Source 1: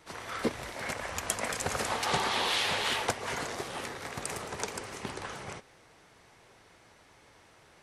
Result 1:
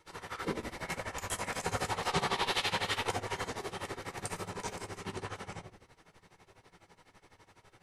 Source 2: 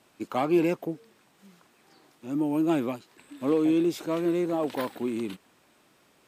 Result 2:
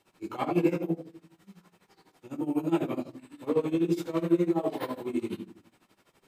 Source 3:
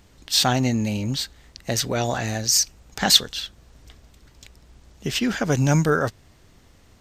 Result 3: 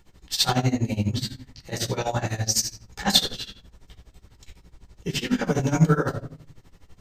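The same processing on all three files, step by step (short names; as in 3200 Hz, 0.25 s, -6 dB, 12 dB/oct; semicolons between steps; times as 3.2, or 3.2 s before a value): shoebox room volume 610 m³, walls furnished, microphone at 4.3 m; tremolo 12 Hz, depth 87%; gain -5.5 dB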